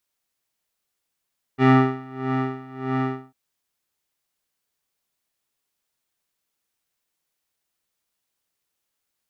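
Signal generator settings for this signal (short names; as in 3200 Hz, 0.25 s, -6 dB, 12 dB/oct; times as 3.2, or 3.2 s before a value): synth patch with tremolo C4, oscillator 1 square, oscillator 2 square, interval +7 st, oscillator 2 level -5.5 dB, sub -3 dB, filter lowpass, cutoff 1100 Hz, Q 1.4, filter envelope 1 oct, filter decay 0.17 s, filter sustain 50%, attack 43 ms, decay 0.48 s, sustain -10 dB, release 0.20 s, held 1.55 s, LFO 1.6 Hz, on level 18.5 dB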